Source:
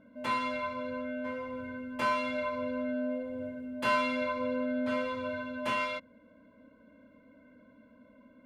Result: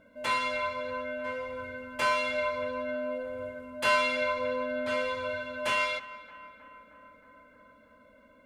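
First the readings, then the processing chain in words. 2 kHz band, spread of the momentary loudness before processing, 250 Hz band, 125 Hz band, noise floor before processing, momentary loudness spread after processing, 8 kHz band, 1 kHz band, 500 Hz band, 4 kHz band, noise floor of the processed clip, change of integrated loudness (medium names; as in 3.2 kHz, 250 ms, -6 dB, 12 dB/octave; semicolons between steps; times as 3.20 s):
+5.0 dB, 9 LU, -7.0 dB, -0.5 dB, -60 dBFS, 13 LU, +9.0 dB, +2.0 dB, +3.0 dB, +6.5 dB, -59 dBFS, +2.5 dB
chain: graphic EQ 125/250/1000/8000 Hz -6/-12/-4/+4 dB; on a send: band-passed feedback delay 313 ms, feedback 73%, band-pass 1.2 kHz, level -15.5 dB; on the sum: trim +6 dB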